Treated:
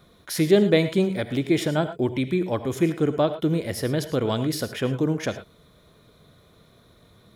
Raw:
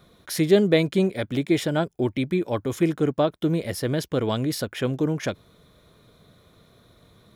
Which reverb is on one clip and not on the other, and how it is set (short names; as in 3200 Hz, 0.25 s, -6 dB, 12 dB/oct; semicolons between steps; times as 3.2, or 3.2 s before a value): non-linear reverb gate 0.13 s rising, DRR 10.5 dB